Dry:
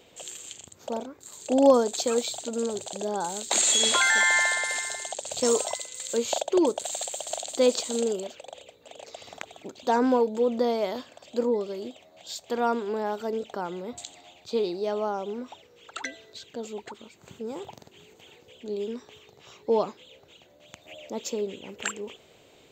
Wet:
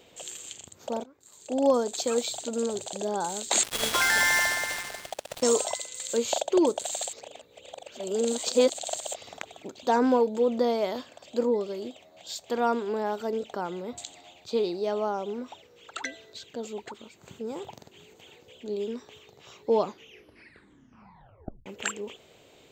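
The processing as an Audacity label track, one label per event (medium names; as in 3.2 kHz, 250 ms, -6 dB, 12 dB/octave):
1.040000	2.360000	fade in, from -14 dB
3.630000	5.430000	dead-time distortion of 0.081 ms
7.130000	9.140000	reverse
19.840000	19.840000	tape stop 1.82 s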